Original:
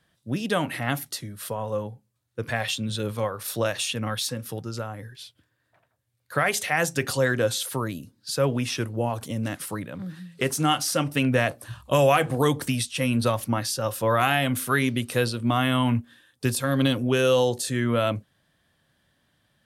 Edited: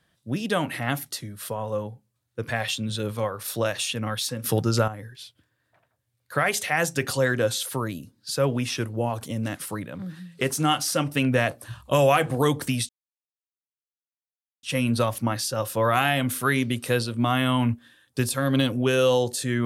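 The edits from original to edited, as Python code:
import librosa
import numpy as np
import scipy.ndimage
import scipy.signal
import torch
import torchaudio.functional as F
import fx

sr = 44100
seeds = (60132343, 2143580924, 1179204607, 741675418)

y = fx.edit(x, sr, fx.clip_gain(start_s=4.44, length_s=0.44, db=10.5),
    fx.insert_silence(at_s=12.89, length_s=1.74), tone=tone)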